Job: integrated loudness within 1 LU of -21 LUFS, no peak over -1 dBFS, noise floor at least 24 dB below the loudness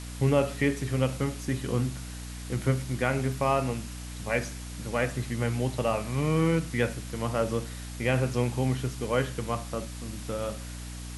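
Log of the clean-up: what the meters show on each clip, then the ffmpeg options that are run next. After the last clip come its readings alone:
hum 60 Hz; harmonics up to 300 Hz; hum level -37 dBFS; noise floor -39 dBFS; noise floor target -54 dBFS; loudness -29.5 LUFS; peak -11.0 dBFS; loudness target -21.0 LUFS
-> -af "bandreject=f=60:t=h:w=4,bandreject=f=120:t=h:w=4,bandreject=f=180:t=h:w=4,bandreject=f=240:t=h:w=4,bandreject=f=300:t=h:w=4"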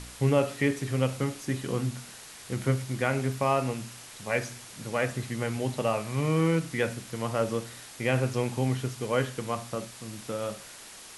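hum none; noise floor -47 dBFS; noise floor target -54 dBFS
-> -af "afftdn=nr=7:nf=-47"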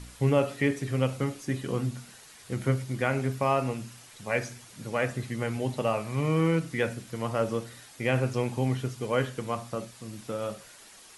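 noise floor -51 dBFS; noise floor target -54 dBFS
-> -af "afftdn=nr=6:nf=-51"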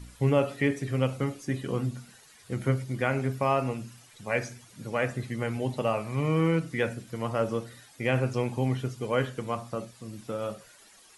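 noise floor -55 dBFS; loudness -29.5 LUFS; peak -11.0 dBFS; loudness target -21.0 LUFS
-> -af "volume=8.5dB"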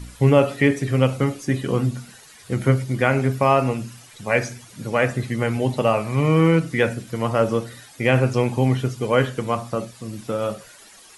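loudness -21.0 LUFS; peak -2.5 dBFS; noise floor -47 dBFS

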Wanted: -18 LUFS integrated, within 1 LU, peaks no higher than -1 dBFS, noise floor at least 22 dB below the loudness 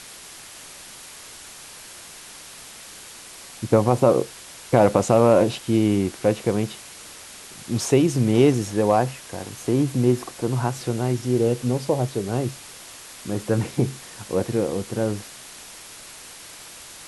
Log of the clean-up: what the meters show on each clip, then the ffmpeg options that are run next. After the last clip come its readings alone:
noise floor -42 dBFS; noise floor target -44 dBFS; loudness -22.0 LUFS; peak -2.0 dBFS; loudness target -18.0 LUFS
-> -af "afftdn=nr=6:nf=-42"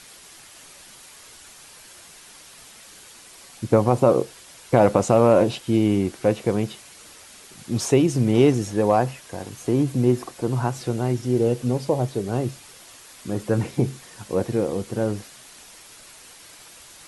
noise floor -47 dBFS; loudness -22.0 LUFS; peak -2.0 dBFS; loudness target -18.0 LUFS
-> -af "volume=4dB,alimiter=limit=-1dB:level=0:latency=1"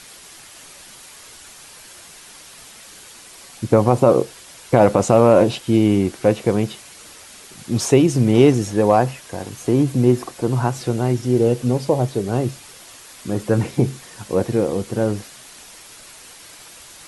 loudness -18.0 LUFS; peak -1.0 dBFS; noise floor -43 dBFS

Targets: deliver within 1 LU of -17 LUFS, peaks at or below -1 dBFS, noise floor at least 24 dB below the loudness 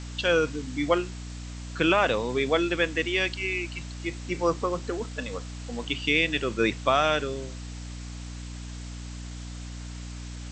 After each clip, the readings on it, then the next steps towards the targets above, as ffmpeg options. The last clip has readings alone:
hum 60 Hz; harmonics up to 300 Hz; hum level -35 dBFS; noise floor -38 dBFS; noise floor target -51 dBFS; loudness -26.5 LUFS; peak -8.5 dBFS; loudness target -17.0 LUFS
-> -af "bandreject=f=60:t=h:w=4,bandreject=f=120:t=h:w=4,bandreject=f=180:t=h:w=4,bandreject=f=240:t=h:w=4,bandreject=f=300:t=h:w=4"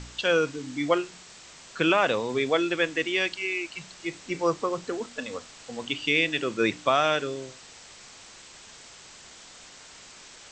hum none; noise floor -49 dBFS; noise floor target -51 dBFS
-> -af "afftdn=nr=6:nf=-49"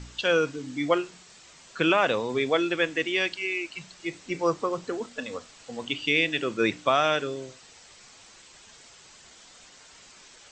noise floor -52 dBFS; loudness -26.5 LUFS; peak -9.0 dBFS; loudness target -17.0 LUFS
-> -af "volume=9.5dB,alimiter=limit=-1dB:level=0:latency=1"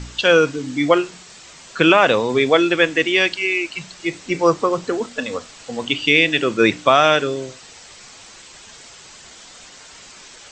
loudness -17.0 LUFS; peak -1.0 dBFS; noise floor -43 dBFS

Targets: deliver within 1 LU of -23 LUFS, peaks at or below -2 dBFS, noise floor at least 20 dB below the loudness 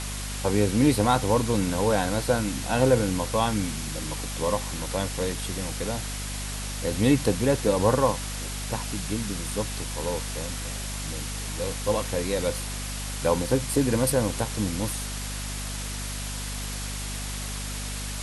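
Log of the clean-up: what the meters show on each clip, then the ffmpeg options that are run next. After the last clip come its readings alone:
hum 50 Hz; harmonics up to 250 Hz; hum level -32 dBFS; noise floor -33 dBFS; noise floor target -47 dBFS; loudness -27.0 LUFS; peak -7.5 dBFS; loudness target -23.0 LUFS
-> -af "bandreject=f=50:t=h:w=6,bandreject=f=100:t=h:w=6,bandreject=f=150:t=h:w=6,bandreject=f=200:t=h:w=6,bandreject=f=250:t=h:w=6"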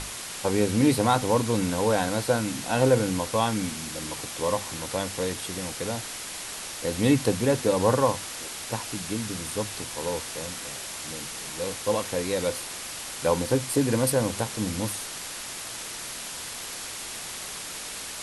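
hum none; noise floor -37 dBFS; noise floor target -48 dBFS
-> -af "afftdn=nr=11:nf=-37"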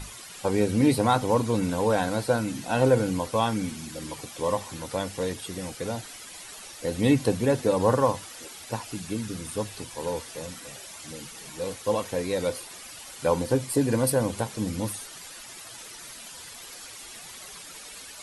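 noise floor -44 dBFS; noise floor target -47 dBFS
-> -af "afftdn=nr=6:nf=-44"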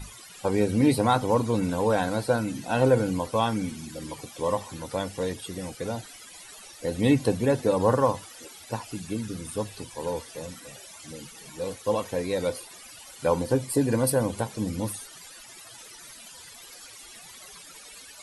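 noise floor -47 dBFS; loudness -27.0 LUFS; peak -8.5 dBFS; loudness target -23.0 LUFS
-> -af "volume=4dB"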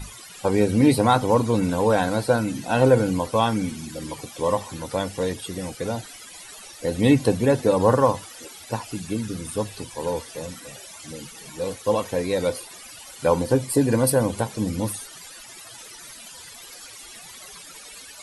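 loudness -23.0 LUFS; peak -4.5 dBFS; noise floor -43 dBFS

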